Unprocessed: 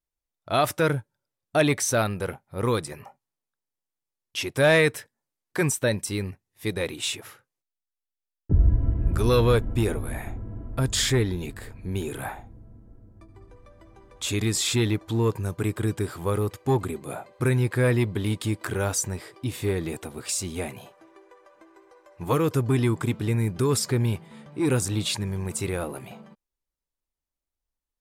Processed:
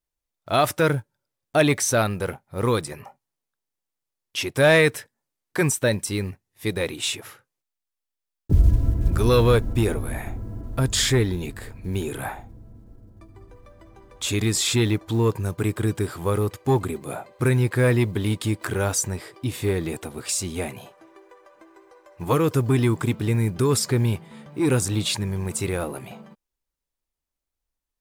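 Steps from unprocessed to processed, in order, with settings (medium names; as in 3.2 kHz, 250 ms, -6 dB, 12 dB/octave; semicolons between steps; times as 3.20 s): block-companded coder 7-bit; trim +2.5 dB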